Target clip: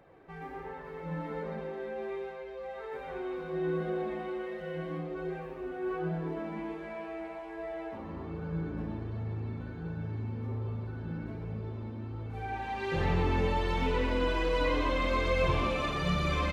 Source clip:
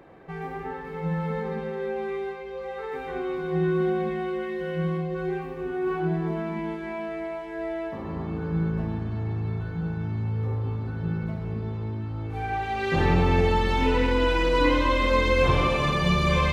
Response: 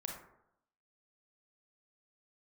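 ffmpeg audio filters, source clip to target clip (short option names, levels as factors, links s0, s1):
-filter_complex "[0:a]asplit=5[s0][s1][s2][s3][s4];[s1]adelay=122,afreqshift=130,volume=0.266[s5];[s2]adelay=244,afreqshift=260,volume=0.0955[s6];[s3]adelay=366,afreqshift=390,volume=0.0347[s7];[s4]adelay=488,afreqshift=520,volume=0.0124[s8];[s0][s5][s6][s7][s8]amix=inputs=5:normalize=0,flanger=delay=1.3:depth=2.7:regen=-42:speed=1.3:shape=triangular,volume=0.631"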